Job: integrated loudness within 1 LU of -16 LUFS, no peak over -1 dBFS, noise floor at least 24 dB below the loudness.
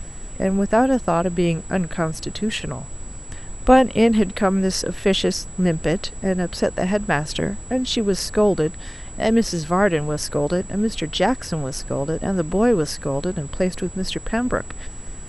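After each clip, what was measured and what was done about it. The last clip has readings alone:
steady tone 7.8 kHz; tone level -40 dBFS; noise floor -37 dBFS; noise floor target -46 dBFS; loudness -21.5 LUFS; peak level -2.0 dBFS; loudness target -16.0 LUFS
-> band-stop 7.8 kHz, Q 30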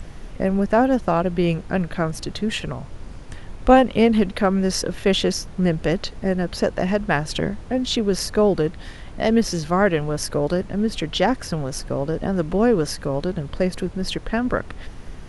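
steady tone not found; noise floor -38 dBFS; noise floor target -46 dBFS
-> noise print and reduce 8 dB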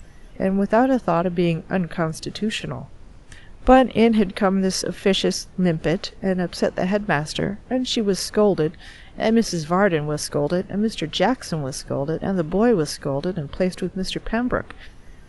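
noise floor -44 dBFS; noise floor target -46 dBFS
-> noise print and reduce 6 dB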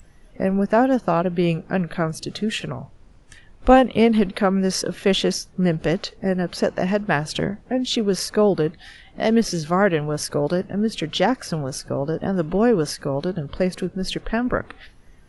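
noise floor -49 dBFS; loudness -21.5 LUFS; peak level -2.0 dBFS; loudness target -16.0 LUFS
-> trim +5.5 dB; peak limiter -1 dBFS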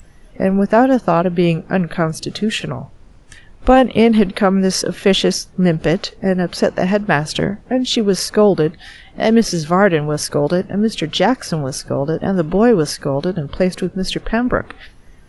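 loudness -16.5 LUFS; peak level -1.0 dBFS; noise floor -44 dBFS

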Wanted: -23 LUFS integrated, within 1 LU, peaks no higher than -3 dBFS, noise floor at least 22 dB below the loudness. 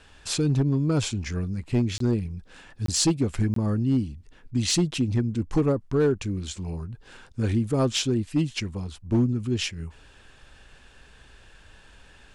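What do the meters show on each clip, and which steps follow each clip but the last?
clipped samples 0.8%; clipping level -15.5 dBFS; dropouts 3; longest dropout 23 ms; loudness -26.0 LUFS; peak level -15.5 dBFS; loudness target -23.0 LUFS
-> clip repair -15.5 dBFS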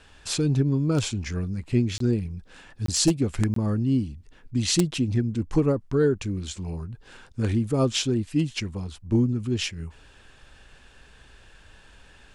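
clipped samples 0.0%; dropouts 3; longest dropout 23 ms
-> interpolate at 1.98/2.86/3.54 s, 23 ms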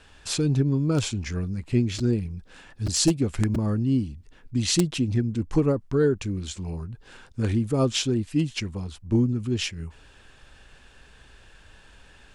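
dropouts 0; loudness -25.5 LUFS; peak level -6.5 dBFS; loudness target -23.0 LUFS
-> trim +2.5 dB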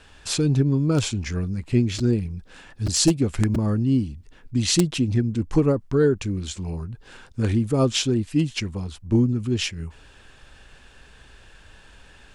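loudness -23.0 LUFS; peak level -4.0 dBFS; noise floor -51 dBFS

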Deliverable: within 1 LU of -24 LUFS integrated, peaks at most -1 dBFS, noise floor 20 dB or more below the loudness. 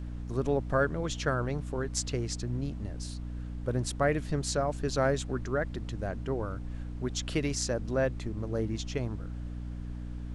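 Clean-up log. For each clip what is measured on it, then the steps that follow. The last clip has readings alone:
hum 60 Hz; highest harmonic 300 Hz; hum level -35 dBFS; noise floor -39 dBFS; noise floor target -53 dBFS; loudness -32.5 LUFS; peak level -13.5 dBFS; loudness target -24.0 LUFS
-> de-hum 60 Hz, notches 5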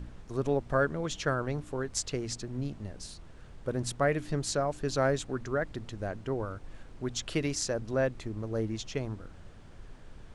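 hum not found; noise floor -50 dBFS; noise floor target -53 dBFS
-> noise print and reduce 6 dB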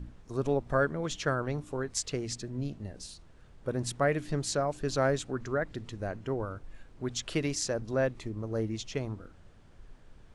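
noise floor -55 dBFS; loudness -33.0 LUFS; peak level -13.5 dBFS; loudness target -24.0 LUFS
-> trim +9 dB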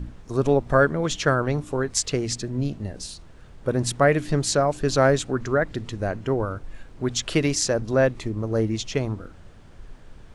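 loudness -24.0 LUFS; peak level -4.5 dBFS; noise floor -46 dBFS

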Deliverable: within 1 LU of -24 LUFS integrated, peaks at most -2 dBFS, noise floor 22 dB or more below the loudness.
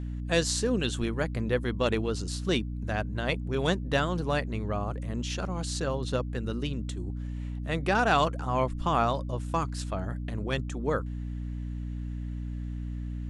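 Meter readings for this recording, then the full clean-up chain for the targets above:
hum 60 Hz; highest harmonic 300 Hz; hum level -32 dBFS; loudness -30.5 LUFS; peak level -10.5 dBFS; loudness target -24.0 LUFS
-> de-hum 60 Hz, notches 5; trim +6.5 dB

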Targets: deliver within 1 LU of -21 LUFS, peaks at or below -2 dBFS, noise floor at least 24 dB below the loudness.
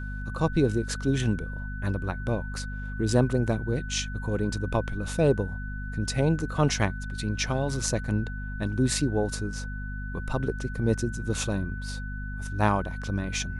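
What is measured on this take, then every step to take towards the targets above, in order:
hum 50 Hz; highest harmonic 250 Hz; hum level -32 dBFS; steady tone 1.5 kHz; tone level -40 dBFS; loudness -28.5 LUFS; peak level -8.0 dBFS; loudness target -21.0 LUFS
-> hum notches 50/100/150/200/250 Hz; band-stop 1.5 kHz, Q 30; trim +7.5 dB; peak limiter -2 dBFS

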